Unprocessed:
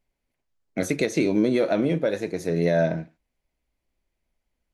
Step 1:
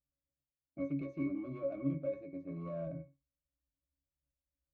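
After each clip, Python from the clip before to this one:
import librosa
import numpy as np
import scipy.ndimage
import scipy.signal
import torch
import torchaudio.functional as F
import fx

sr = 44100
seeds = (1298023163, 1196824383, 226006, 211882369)

y = np.clip(10.0 ** (17.5 / 20.0) * x, -1.0, 1.0) / 10.0 ** (17.5 / 20.0)
y = fx.env_lowpass(y, sr, base_hz=680.0, full_db=-19.5)
y = fx.octave_resonator(y, sr, note='C#', decay_s=0.22)
y = y * librosa.db_to_amplitude(-3.0)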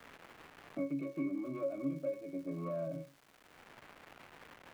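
y = scipy.signal.sosfilt(scipy.signal.butter(2, 190.0, 'highpass', fs=sr, output='sos'), x)
y = fx.dmg_crackle(y, sr, seeds[0], per_s=560.0, level_db=-57.0)
y = fx.band_squash(y, sr, depth_pct=70)
y = y * librosa.db_to_amplitude(2.0)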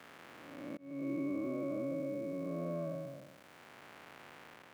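y = fx.spec_blur(x, sr, span_ms=457.0)
y = scipy.signal.sosfilt(scipy.signal.butter(2, 93.0, 'highpass', fs=sr, output='sos'), y)
y = fx.auto_swell(y, sr, attack_ms=329.0)
y = y * librosa.db_to_amplitude(4.0)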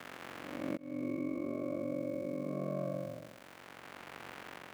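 y = fx.rider(x, sr, range_db=5, speed_s=0.5)
y = y * np.sin(2.0 * np.pi * 23.0 * np.arange(len(y)) / sr)
y = y * librosa.db_to_amplitude(4.5)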